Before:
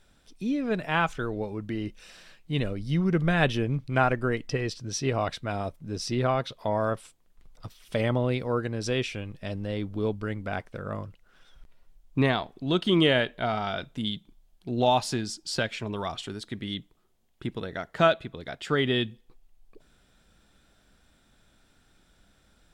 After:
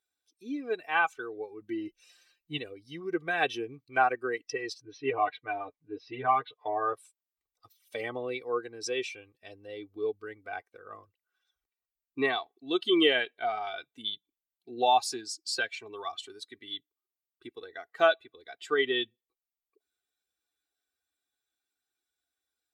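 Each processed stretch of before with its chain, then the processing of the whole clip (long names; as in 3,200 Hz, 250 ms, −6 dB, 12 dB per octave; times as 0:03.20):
0:01.61–0:02.58: low-shelf EQ 160 Hz +10 dB + comb filter 5.7 ms, depth 56%
0:04.81–0:06.93: low-pass filter 3,100 Hz 24 dB per octave + comb filter 6.7 ms, depth 84%
whole clip: spectral dynamics exaggerated over time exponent 1.5; high-pass filter 390 Hz 12 dB per octave; comb filter 2.6 ms, depth 75%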